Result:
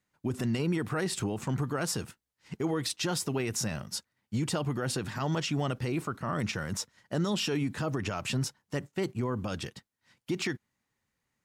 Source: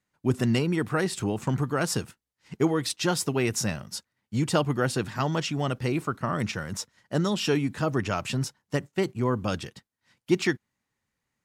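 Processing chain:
brickwall limiter −22 dBFS, peak gain reduction 11.5 dB

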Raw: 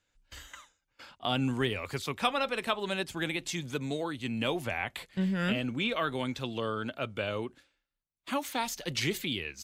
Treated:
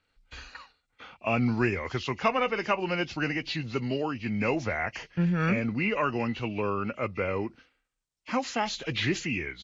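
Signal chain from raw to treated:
hearing-aid frequency compression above 2,100 Hz 1.5 to 1
pitch shifter −1.5 semitones
level +4 dB

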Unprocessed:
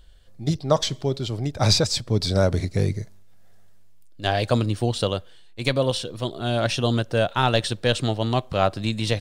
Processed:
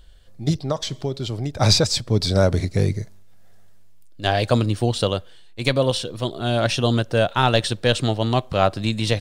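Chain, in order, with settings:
0:00.61–0:01.55: downward compressor 3 to 1, threshold −25 dBFS, peak gain reduction 9.5 dB
level +2.5 dB

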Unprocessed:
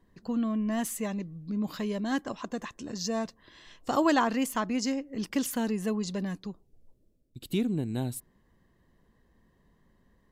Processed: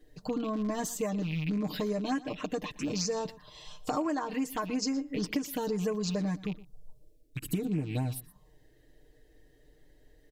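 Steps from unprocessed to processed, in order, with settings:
loose part that buzzes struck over −43 dBFS, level −34 dBFS
comb filter 6.6 ms, depth 79%
downward compressor 16 to 1, threshold −33 dBFS, peak gain reduction 17.5 dB
phaser swept by the level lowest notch 160 Hz, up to 3,900 Hz, full sweep at −32 dBFS
on a send: single-tap delay 119 ms −19.5 dB
on the sum: level +6 dB

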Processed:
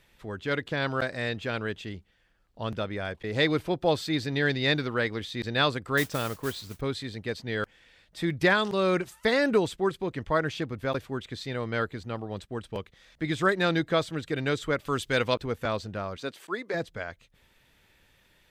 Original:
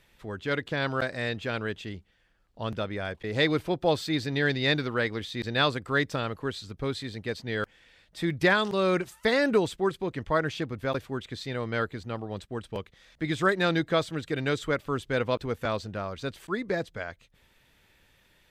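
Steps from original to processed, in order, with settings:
0:05.97–0:06.81: noise that follows the level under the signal 12 dB
0:14.85–0:15.34: high-shelf EQ 2,100 Hz +10.5 dB
0:16.16–0:16.73: high-pass filter 190 Hz → 450 Hz 12 dB per octave

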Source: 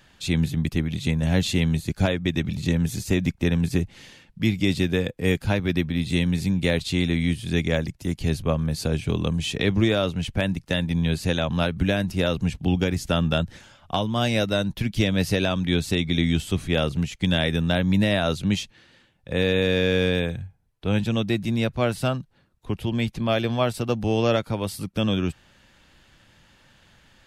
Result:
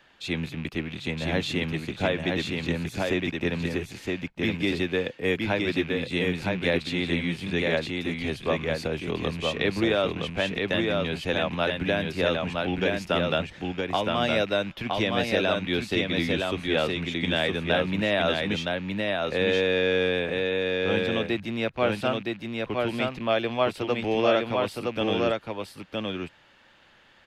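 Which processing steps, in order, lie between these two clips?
loose part that buzzes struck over −28 dBFS, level −30 dBFS
three-way crossover with the lows and the highs turned down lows −13 dB, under 280 Hz, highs −13 dB, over 4,100 Hz
on a send: single-tap delay 966 ms −3 dB

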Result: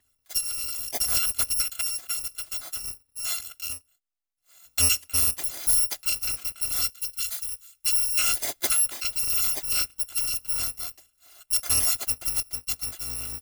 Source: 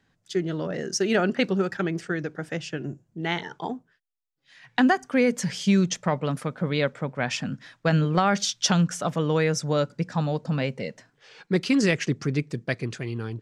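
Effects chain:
samples in bit-reversed order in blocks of 256 samples
0:06.90–0:08.19: guitar amp tone stack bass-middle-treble 10-0-10
level −2 dB

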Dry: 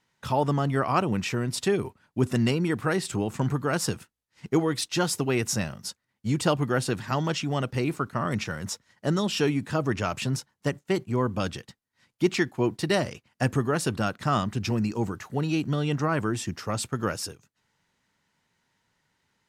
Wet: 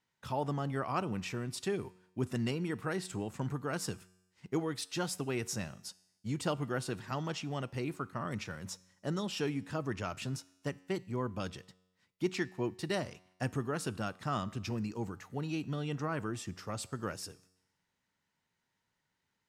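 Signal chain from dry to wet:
tuned comb filter 92 Hz, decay 0.95 s, harmonics all, mix 40%
level −6 dB

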